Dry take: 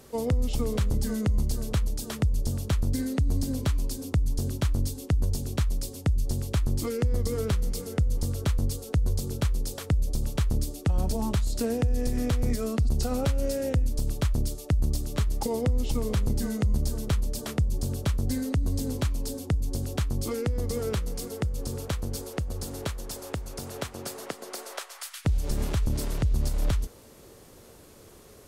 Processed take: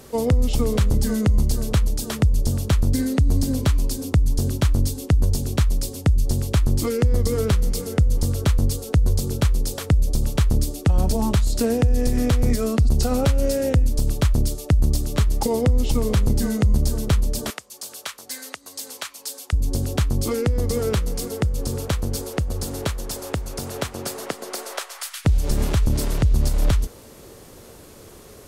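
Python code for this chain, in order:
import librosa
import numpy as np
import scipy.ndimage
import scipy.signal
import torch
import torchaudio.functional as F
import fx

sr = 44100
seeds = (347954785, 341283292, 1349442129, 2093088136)

y = fx.highpass(x, sr, hz=1100.0, slope=12, at=(17.5, 19.53))
y = F.gain(torch.from_numpy(y), 7.0).numpy()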